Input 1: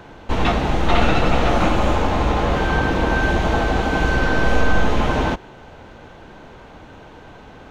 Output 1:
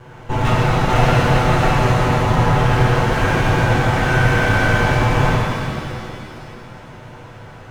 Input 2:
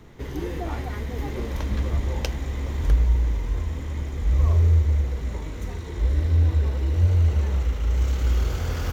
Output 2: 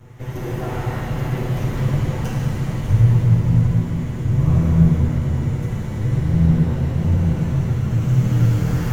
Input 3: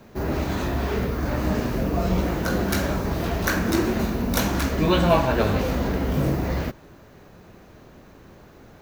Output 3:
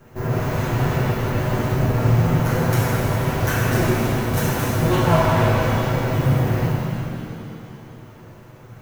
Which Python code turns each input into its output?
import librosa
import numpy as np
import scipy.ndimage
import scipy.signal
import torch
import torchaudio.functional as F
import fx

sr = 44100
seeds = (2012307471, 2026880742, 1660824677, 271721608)

p1 = fx.lower_of_two(x, sr, delay_ms=8.0)
p2 = fx.graphic_eq_10(p1, sr, hz=(125, 250, 4000), db=(9, -5, -7))
p3 = fx.rider(p2, sr, range_db=5, speed_s=2.0)
p4 = p2 + (p3 * 10.0 ** (-1.0 / 20.0))
p5 = fx.rev_shimmer(p4, sr, seeds[0], rt60_s=2.5, semitones=7, shimmer_db=-8, drr_db=-4.5)
y = p5 * 10.0 ** (-7.5 / 20.0)